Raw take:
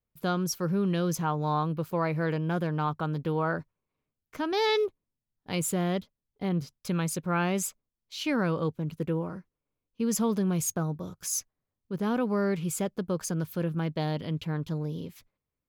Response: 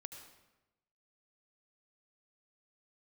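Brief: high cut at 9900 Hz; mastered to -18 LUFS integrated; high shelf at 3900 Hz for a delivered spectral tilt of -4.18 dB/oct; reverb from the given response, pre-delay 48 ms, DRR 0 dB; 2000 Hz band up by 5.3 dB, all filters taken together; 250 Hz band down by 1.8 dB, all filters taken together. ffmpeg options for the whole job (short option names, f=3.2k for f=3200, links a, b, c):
-filter_complex "[0:a]lowpass=9.9k,equalizer=f=250:t=o:g=-3,equalizer=f=2k:t=o:g=6,highshelf=f=3.9k:g=5,asplit=2[a][b];[1:a]atrim=start_sample=2205,adelay=48[c];[b][c]afir=irnorm=-1:irlink=0,volume=4.5dB[d];[a][d]amix=inputs=2:normalize=0,volume=9dB"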